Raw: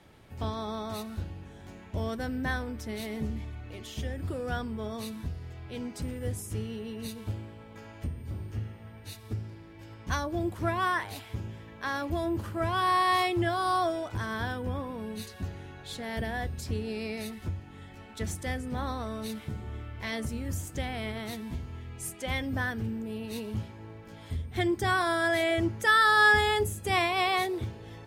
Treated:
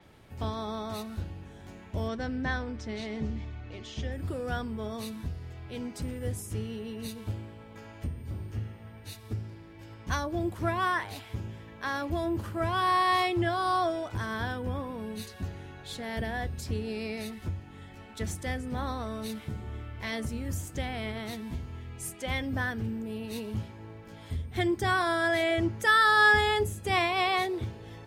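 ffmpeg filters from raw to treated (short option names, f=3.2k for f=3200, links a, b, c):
-filter_complex "[0:a]asettb=1/sr,asplit=3[a][b][c];[a]atrim=end=2.084[d];[b]atrim=start=2.08:end=4.12,asetpts=PTS-STARTPTS,afade=t=in:d=0.004:c=qsin,afade=t=out:st=2.036:d=0.004:c=qsin,lowpass=f=6.6k:w=0.5412,lowpass=f=6.6k:w=1.3066[e];[c]atrim=start=4.116[f];[d][e]acrossfade=d=0.004:c1=hsin:c2=qsin[g];[g][f]acrossfade=d=0.004:c1=qsin:c2=hsin,adynamicequalizer=threshold=0.00316:dfrequency=7300:dqfactor=0.7:tfrequency=7300:tqfactor=0.7:attack=5:release=100:ratio=0.375:range=3:mode=cutabove:tftype=highshelf"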